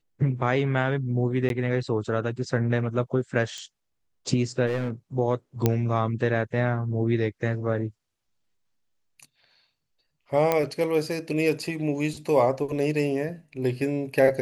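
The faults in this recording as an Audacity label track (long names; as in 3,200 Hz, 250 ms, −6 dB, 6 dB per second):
1.490000	1.500000	drop-out 12 ms
3.580000	3.580000	click −26 dBFS
4.660000	4.900000	clipping −22 dBFS
5.660000	5.660000	click −7 dBFS
10.520000	10.520000	click −9 dBFS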